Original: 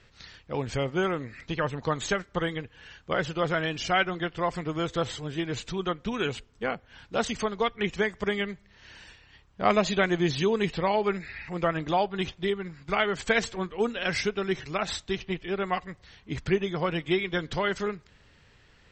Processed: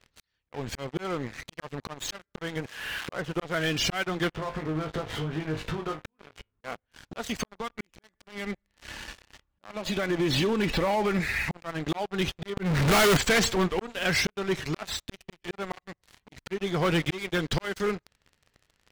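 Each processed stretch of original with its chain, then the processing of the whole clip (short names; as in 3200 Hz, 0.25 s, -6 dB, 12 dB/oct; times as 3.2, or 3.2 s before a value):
2.56–3.42 switching spikes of -23 dBFS + LPF 2100 Hz
4.31–6.64 LPF 1900 Hz + compressor 8:1, threshold -41 dBFS + flutter echo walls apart 3.3 m, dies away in 0.23 s
7.45–11.19 high shelf 5800 Hz -12 dB + comb 3.5 ms, depth 40% + compressor 20:1, threshold -30 dBFS
12.57–13.17 LPF 3200 Hz + power-law curve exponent 0.35
whole clip: auto swell 0.673 s; sample leveller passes 5; gain -6 dB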